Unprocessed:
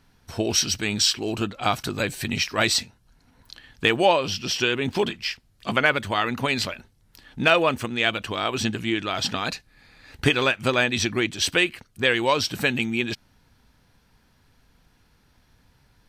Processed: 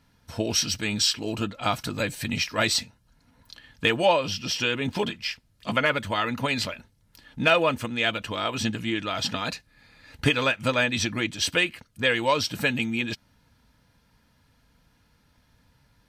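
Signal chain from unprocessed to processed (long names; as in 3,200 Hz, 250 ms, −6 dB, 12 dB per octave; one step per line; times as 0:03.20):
notch comb filter 380 Hz
level −1 dB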